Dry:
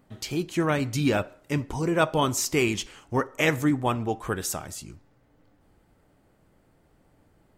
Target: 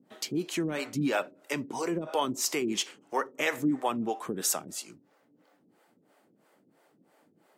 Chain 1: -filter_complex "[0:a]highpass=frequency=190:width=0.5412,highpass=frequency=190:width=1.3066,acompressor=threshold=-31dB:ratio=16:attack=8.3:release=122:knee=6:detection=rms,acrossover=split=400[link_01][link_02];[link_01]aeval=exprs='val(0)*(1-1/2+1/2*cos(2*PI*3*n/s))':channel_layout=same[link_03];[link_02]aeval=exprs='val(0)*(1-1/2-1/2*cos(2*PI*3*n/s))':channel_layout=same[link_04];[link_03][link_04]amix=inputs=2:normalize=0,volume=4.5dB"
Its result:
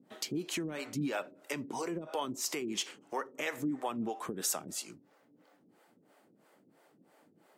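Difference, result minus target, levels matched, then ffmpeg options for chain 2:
downward compressor: peak gain reduction +7.5 dB
-filter_complex "[0:a]highpass=frequency=190:width=0.5412,highpass=frequency=190:width=1.3066,acompressor=threshold=-23dB:ratio=16:attack=8.3:release=122:knee=6:detection=rms,acrossover=split=400[link_01][link_02];[link_01]aeval=exprs='val(0)*(1-1/2+1/2*cos(2*PI*3*n/s))':channel_layout=same[link_03];[link_02]aeval=exprs='val(0)*(1-1/2-1/2*cos(2*PI*3*n/s))':channel_layout=same[link_04];[link_03][link_04]amix=inputs=2:normalize=0,volume=4.5dB"

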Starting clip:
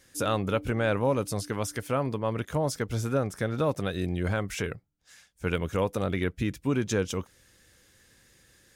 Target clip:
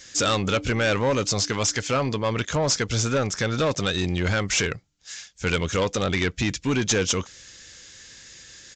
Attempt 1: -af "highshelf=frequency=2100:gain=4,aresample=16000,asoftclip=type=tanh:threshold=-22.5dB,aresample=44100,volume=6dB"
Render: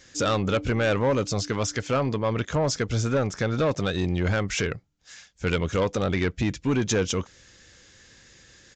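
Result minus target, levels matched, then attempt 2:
4,000 Hz band −5.0 dB
-af "highshelf=frequency=2100:gain=15,aresample=16000,asoftclip=type=tanh:threshold=-22.5dB,aresample=44100,volume=6dB"

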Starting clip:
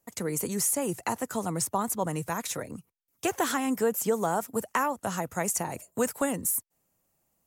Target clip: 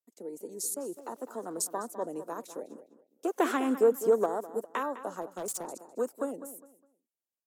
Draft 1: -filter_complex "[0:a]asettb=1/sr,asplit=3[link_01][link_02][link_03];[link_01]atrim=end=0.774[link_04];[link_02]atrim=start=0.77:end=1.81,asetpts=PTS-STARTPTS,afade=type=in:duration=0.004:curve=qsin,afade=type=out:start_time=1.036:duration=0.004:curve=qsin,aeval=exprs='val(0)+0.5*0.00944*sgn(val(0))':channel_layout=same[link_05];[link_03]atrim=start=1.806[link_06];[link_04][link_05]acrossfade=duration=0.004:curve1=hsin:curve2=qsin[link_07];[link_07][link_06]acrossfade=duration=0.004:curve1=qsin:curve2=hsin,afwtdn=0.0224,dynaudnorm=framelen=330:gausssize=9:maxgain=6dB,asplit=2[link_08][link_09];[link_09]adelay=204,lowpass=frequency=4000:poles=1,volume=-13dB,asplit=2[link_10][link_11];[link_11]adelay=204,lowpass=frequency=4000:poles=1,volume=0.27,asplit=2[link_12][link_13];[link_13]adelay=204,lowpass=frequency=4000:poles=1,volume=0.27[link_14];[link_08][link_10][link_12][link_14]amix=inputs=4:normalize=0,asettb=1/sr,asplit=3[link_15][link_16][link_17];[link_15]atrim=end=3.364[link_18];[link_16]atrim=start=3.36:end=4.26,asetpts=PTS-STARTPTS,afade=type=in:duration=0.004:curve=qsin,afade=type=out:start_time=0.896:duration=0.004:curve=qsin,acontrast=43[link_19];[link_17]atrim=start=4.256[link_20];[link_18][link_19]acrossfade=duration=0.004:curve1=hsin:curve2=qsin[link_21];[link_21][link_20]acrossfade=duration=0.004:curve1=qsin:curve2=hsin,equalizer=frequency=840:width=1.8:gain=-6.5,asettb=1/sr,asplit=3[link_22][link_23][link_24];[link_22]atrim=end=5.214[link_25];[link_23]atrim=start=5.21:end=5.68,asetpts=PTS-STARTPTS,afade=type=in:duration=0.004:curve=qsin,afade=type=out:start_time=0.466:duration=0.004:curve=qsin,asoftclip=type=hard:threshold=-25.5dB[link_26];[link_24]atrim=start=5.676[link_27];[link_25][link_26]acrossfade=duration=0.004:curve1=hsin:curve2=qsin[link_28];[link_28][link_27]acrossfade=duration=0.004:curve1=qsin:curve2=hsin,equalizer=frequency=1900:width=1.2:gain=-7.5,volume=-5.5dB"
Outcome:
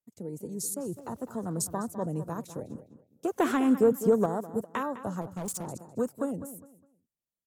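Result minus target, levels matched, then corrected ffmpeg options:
250 Hz band +4.5 dB
-filter_complex "[0:a]asettb=1/sr,asplit=3[link_01][link_02][link_03];[link_01]atrim=end=0.774[link_04];[link_02]atrim=start=0.77:end=1.81,asetpts=PTS-STARTPTS,afade=type=in:duration=0.004:curve=qsin,afade=type=out:start_time=1.036:duration=0.004:curve=qsin,aeval=exprs='val(0)+0.5*0.00944*sgn(val(0))':channel_layout=same[link_05];[link_03]atrim=start=1.806[link_06];[link_04][link_05]acrossfade=duration=0.004:curve1=hsin:curve2=qsin[link_07];[link_07][link_06]acrossfade=duration=0.004:curve1=qsin:curve2=hsin,afwtdn=0.0224,dynaudnorm=framelen=330:gausssize=9:maxgain=6dB,asplit=2[link_08][link_09];[link_09]adelay=204,lowpass=frequency=4000:poles=1,volume=-13dB,asplit=2[link_10][link_11];[link_11]adelay=204,lowpass=frequency=4000:poles=1,volume=0.27,asplit=2[link_12][link_13];[link_13]adelay=204,lowpass=frequency=4000:poles=1,volume=0.27[link_14];[link_08][link_10][link_12][link_14]amix=inputs=4:normalize=0,asettb=1/sr,asplit=3[link_15][link_16][link_17];[link_15]atrim=end=3.364[link_18];[link_16]atrim=start=3.36:end=4.26,asetpts=PTS-STARTPTS,afade=type=in:duration=0.004:curve=qsin,afade=type=out:start_time=0.896:duration=0.004:curve=qsin,acontrast=43[link_19];[link_17]atrim=start=4.256[link_20];[link_18][link_19]acrossfade=duration=0.004:curve1=hsin:curve2=qsin[link_21];[link_21][link_20]acrossfade=duration=0.004:curve1=qsin:curve2=hsin,highpass=frequency=300:width=0.5412,highpass=frequency=300:width=1.3066,equalizer=frequency=840:width=1.8:gain=-6.5,asettb=1/sr,asplit=3[link_22][link_23][link_24];[link_22]atrim=end=5.214[link_25];[link_23]atrim=start=5.21:end=5.68,asetpts=PTS-STARTPTS,afade=type=in:duration=0.004:curve=qsin,afade=type=out:start_time=0.466:duration=0.004:curve=qsin,asoftclip=type=hard:threshold=-25.5dB[link_26];[link_24]atrim=start=5.676[link_27];[link_25][link_26]acrossfade=duration=0.004:curve1=hsin:curve2=qsin[link_28];[link_28][link_27]acrossfade=duration=0.004:curve1=qsin:curve2=hsin,equalizer=frequency=1900:width=1.2:gain=-7.5,volume=-5.5dB"

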